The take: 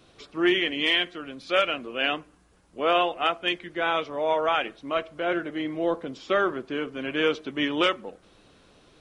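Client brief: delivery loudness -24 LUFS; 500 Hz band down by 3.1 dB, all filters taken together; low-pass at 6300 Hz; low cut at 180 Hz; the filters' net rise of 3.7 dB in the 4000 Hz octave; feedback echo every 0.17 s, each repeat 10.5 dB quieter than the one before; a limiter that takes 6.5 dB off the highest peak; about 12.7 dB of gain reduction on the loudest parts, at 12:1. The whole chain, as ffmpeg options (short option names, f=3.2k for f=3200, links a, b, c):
-af "highpass=180,lowpass=6.3k,equalizer=f=500:t=o:g=-4,equalizer=f=4k:t=o:g=6,acompressor=threshold=-30dB:ratio=12,alimiter=level_in=1dB:limit=-24dB:level=0:latency=1,volume=-1dB,aecho=1:1:170|340|510:0.299|0.0896|0.0269,volume=12dB"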